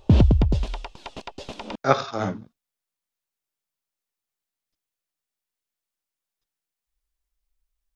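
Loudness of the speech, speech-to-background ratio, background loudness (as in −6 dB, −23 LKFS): −25.5 LKFS, −4.5 dB, −21.0 LKFS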